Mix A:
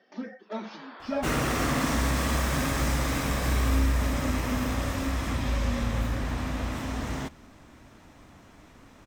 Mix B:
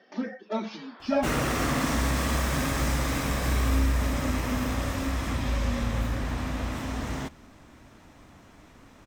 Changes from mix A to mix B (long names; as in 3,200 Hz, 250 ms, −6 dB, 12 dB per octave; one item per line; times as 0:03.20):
speech +5.0 dB
first sound −4.5 dB